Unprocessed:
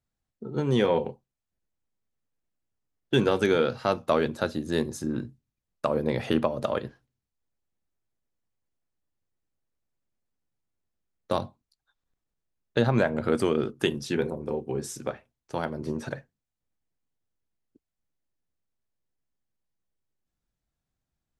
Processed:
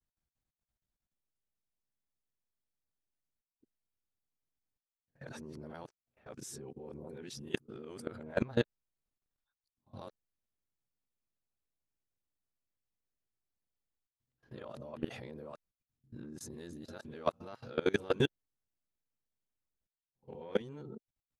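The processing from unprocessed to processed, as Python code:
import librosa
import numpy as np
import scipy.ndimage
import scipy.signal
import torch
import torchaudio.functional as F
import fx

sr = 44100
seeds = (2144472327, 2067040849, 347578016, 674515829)

y = np.flip(x).copy()
y = fx.level_steps(y, sr, step_db=21)
y = F.gain(torch.from_numpy(y), -4.5).numpy()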